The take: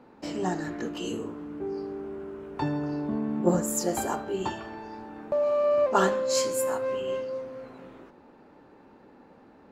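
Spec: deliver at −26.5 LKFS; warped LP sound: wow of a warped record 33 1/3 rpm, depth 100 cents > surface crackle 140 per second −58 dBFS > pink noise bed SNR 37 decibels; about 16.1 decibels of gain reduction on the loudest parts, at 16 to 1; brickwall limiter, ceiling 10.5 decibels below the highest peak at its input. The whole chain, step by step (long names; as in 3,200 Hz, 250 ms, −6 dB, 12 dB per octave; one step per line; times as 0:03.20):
downward compressor 16 to 1, threshold −33 dBFS
brickwall limiter −31.5 dBFS
wow of a warped record 33 1/3 rpm, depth 100 cents
surface crackle 140 per second −58 dBFS
pink noise bed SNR 37 dB
level +13 dB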